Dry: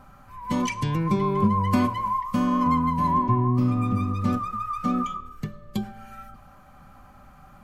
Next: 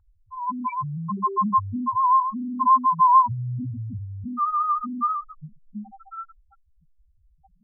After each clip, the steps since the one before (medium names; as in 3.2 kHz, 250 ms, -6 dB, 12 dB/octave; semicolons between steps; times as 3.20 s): loudest bins only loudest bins 1; high-order bell 1.1 kHz +13.5 dB 1.2 oct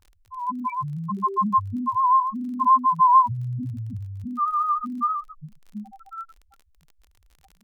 crackle 39 per s -40 dBFS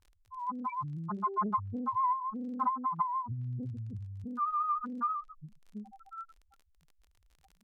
low-pass that closes with the level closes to 550 Hz, closed at -14 dBFS; loudspeaker Doppler distortion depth 0.57 ms; trim -8 dB